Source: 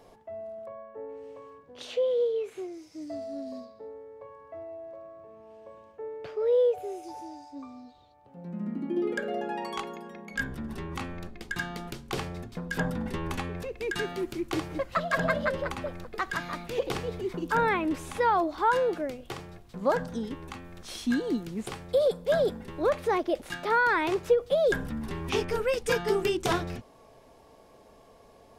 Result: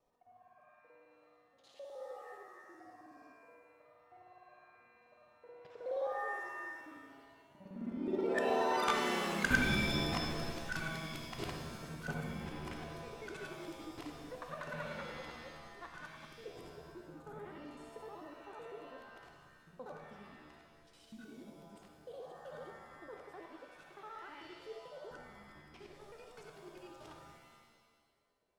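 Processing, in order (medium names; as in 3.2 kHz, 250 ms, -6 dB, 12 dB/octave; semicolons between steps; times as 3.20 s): time reversed locally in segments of 58 ms; Doppler pass-by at 9.28 s, 31 m/s, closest 12 m; time-frequency box 16.27–18.89 s, 590–6500 Hz -8 dB; pitch-shifted reverb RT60 1.4 s, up +7 st, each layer -2 dB, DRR 4 dB; trim +4 dB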